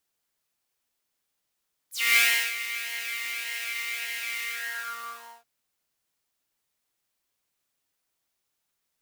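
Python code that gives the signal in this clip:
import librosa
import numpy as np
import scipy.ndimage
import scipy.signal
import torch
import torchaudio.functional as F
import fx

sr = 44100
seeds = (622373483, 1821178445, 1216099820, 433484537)

y = fx.sub_patch_pwm(sr, seeds[0], note=58, wave2='saw', interval_st=0, detune_cents=7, level2_db=-9.0, sub_db=-17, noise_db=-6, kind='highpass', cutoff_hz=830.0, q=5.6, env_oct=4.0, env_decay_s=0.1, env_sustain_pct=35, attack_ms=274.0, decay_s=0.34, sustain_db=-14.0, release_s=1.0, note_s=2.53, lfo_hz=1.7, width_pct=24, width_swing_pct=5)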